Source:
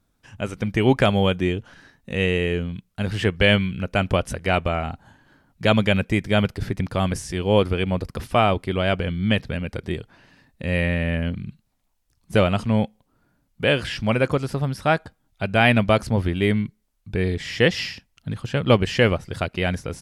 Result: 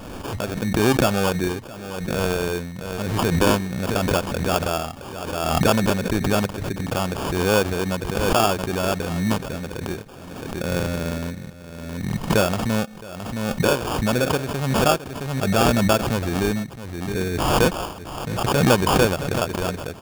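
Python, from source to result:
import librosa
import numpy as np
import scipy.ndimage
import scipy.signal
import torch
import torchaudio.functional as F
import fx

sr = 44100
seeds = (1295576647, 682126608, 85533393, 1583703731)

p1 = fx.low_shelf(x, sr, hz=170.0, db=-8.0)
p2 = fx.sample_hold(p1, sr, seeds[0], rate_hz=2000.0, jitter_pct=0)
p3 = p2 + fx.echo_single(p2, sr, ms=667, db=-20.5, dry=0)
y = fx.pre_swell(p3, sr, db_per_s=32.0)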